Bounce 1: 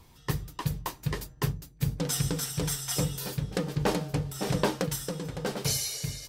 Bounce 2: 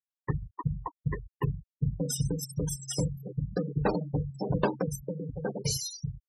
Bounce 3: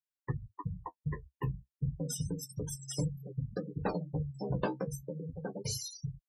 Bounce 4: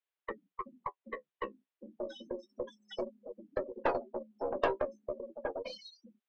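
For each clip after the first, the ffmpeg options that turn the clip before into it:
-af "afftfilt=real='re*gte(hypot(re,im),0.0501)':imag='im*gte(hypot(re,im),0.0501)':win_size=1024:overlap=0.75"
-af "flanger=delay=6.1:depth=10:regen=30:speed=0.32:shape=triangular,volume=0.794"
-af "highpass=f=290:t=q:w=0.5412,highpass=f=290:t=q:w=1.307,lowpass=f=3500:t=q:w=0.5176,lowpass=f=3500:t=q:w=0.7071,lowpass=f=3500:t=q:w=1.932,afreqshift=74,aeval=exprs='0.106*(cos(1*acos(clip(val(0)/0.106,-1,1)))-cos(1*PI/2))+0.00668*(cos(6*acos(clip(val(0)/0.106,-1,1)))-cos(6*PI/2))':c=same,volume=1.68"

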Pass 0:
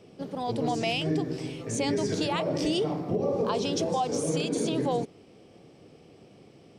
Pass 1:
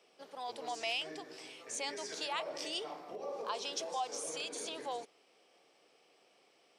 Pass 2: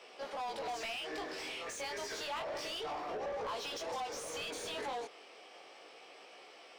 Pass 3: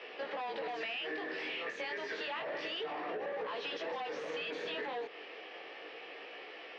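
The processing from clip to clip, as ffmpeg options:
-af "highpass=820,volume=0.562"
-filter_complex "[0:a]flanger=delay=16:depth=7.4:speed=0.3,acompressor=threshold=0.00631:ratio=6,asplit=2[s0][s1];[s1]highpass=f=720:p=1,volume=15.8,asoftclip=type=tanh:threshold=0.0224[s2];[s0][s2]amix=inputs=2:normalize=0,lowpass=f=2800:p=1,volume=0.501,volume=1.19"
-af "highpass=f=140:w=0.5412,highpass=f=140:w=1.3066,equalizer=f=160:t=q:w=4:g=3,equalizer=f=310:t=q:w=4:g=5,equalizer=f=460:t=q:w=4:g=6,equalizer=f=1800:t=q:w=4:g=10,equalizer=f=2700:t=q:w=4:g=5,lowpass=f=4100:w=0.5412,lowpass=f=4100:w=1.3066,acompressor=threshold=0.01:ratio=6,volume=1.5"

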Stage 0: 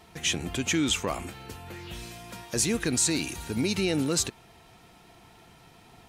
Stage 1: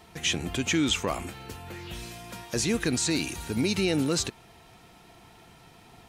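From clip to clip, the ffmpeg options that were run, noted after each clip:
-filter_complex "[0:a]acrossover=split=6500[s0][s1];[s1]acompressor=threshold=0.0126:ratio=4:attack=1:release=60[s2];[s0][s2]amix=inputs=2:normalize=0,volume=1.12"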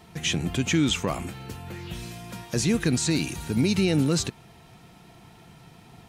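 -af "equalizer=f=150:t=o:w=1.3:g=8"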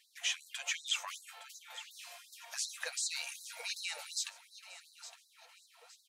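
-af "flanger=delay=4.7:depth=5.7:regen=-47:speed=1.3:shape=sinusoidal,aecho=1:1:863|1726|2589:0.2|0.0698|0.0244,afftfilt=real='re*gte(b*sr/1024,470*pow(3900/470,0.5+0.5*sin(2*PI*2.7*pts/sr)))':imag='im*gte(b*sr/1024,470*pow(3900/470,0.5+0.5*sin(2*PI*2.7*pts/sr)))':win_size=1024:overlap=0.75,volume=0.708"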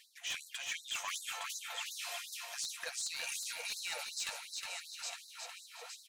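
-af "areverse,acompressor=threshold=0.00447:ratio=6,areverse,aeval=exprs='0.01*(abs(mod(val(0)/0.01+3,4)-2)-1)':c=same,aecho=1:1:363|726|1089|1452:0.501|0.16|0.0513|0.0164,volume=2.82"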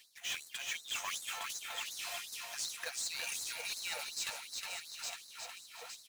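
-af "acrusher=bits=2:mode=log:mix=0:aa=0.000001"

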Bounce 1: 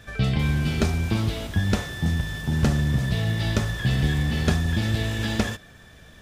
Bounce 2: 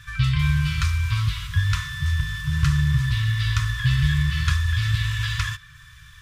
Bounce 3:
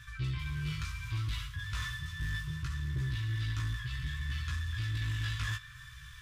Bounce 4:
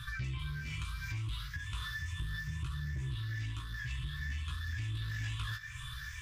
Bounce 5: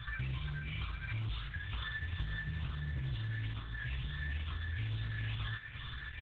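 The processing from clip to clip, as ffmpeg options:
-af "afftfilt=real='re*(1-between(b*sr/4096,160,970))':imag='im*(1-between(b*sr/4096,160,970))':win_size=4096:overlap=0.75,adynamicequalizer=threshold=0.00316:dfrequency=5500:dqfactor=0.7:tfrequency=5500:tqfactor=0.7:attack=5:release=100:ratio=0.375:range=2:mode=cutabove:tftype=highshelf,volume=1.41"
-af "areverse,acompressor=threshold=0.0398:ratio=6,areverse,flanger=delay=15.5:depth=3.4:speed=0.66,asoftclip=type=tanh:threshold=0.0422"
-af "afftfilt=real='re*pow(10,11/40*sin(2*PI*(0.63*log(max(b,1)*sr/1024/100)/log(2)-(2.2)*(pts-256)/sr)))':imag='im*pow(10,11/40*sin(2*PI*(0.63*log(max(b,1)*sr/1024/100)/log(2)-(2.2)*(pts-256)/sr)))':win_size=1024:overlap=0.75,acompressor=threshold=0.01:ratio=12,flanger=delay=0.7:depth=5.4:regen=-72:speed=0.37:shape=triangular,volume=2.82"
-af "aresample=8000,acrusher=bits=5:mode=log:mix=0:aa=0.000001,aresample=44100" -ar 48000 -c:a libopus -b:a 10k

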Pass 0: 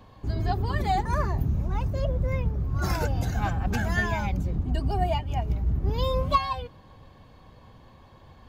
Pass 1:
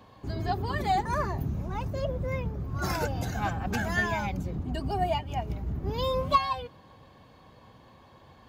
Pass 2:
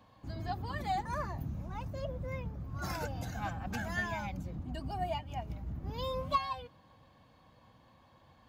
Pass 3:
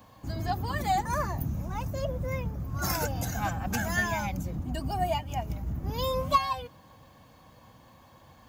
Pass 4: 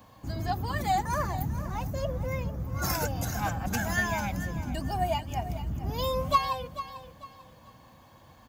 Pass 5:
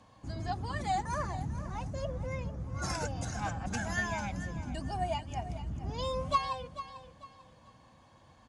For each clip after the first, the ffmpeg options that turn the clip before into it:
-af "highpass=f=150:p=1"
-af "equalizer=f=400:t=o:w=0.2:g=-12.5,volume=0.422"
-af "aexciter=amount=2.3:drive=6.3:freq=5600,volume=2.24"
-af "aecho=1:1:444|888|1332:0.224|0.0694|0.0215"
-af "aresample=22050,aresample=44100,volume=0.562"

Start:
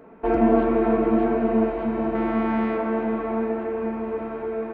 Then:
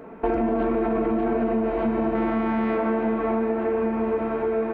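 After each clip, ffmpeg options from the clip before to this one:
-af "alimiter=limit=0.158:level=0:latency=1:release=12,acompressor=threshold=0.0501:ratio=6,volume=2"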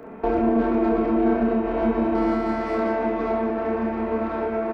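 -filter_complex "[0:a]acrossover=split=160|1000[s0][s1][s2];[s2]asoftclip=type=tanh:threshold=0.0251[s3];[s0][s1][s3]amix=inputs=3:normalize=0,aecho=1:1:30|69|119.7|185.6|271.3:0.631|0.398|0.251|0.158|0.1"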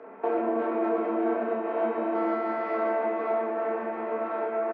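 -filter_complex "[0:a]highpass=440,lowpass=2300,asplit=2[s0][s1];[s1]adelay=15,volume=0.266[s2];[s0][s2]amix=inputs=2:normalize=0,volume=0.794"

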